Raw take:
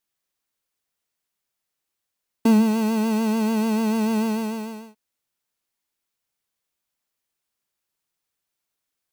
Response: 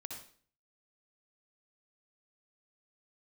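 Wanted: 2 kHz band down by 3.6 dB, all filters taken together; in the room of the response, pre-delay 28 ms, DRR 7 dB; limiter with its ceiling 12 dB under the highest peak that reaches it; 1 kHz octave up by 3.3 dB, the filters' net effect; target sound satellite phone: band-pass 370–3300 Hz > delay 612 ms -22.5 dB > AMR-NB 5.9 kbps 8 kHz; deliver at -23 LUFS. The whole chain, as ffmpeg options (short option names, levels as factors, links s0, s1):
-filter_complex "[0:a]equalizer=f=1000:t=o:g=5,equalizer=f=2000:t=o:g=-6,alimiter=limit=0.1:level=0:latency=1,asplit=2[s0][s1];[1:a]atrim=start_sample=2205,adelay=28[s2];[s1][s2]afir=irnorm=-1:irlink=0,volume=0.596[s3];[s0][s3]amix=inputs=2:normalize=0,highpass=370,lowpass=3300,aecho=1:1:612:0.075,volume=2.82" -ar 8000 -c:a libopencore_amrnb -b:a 5900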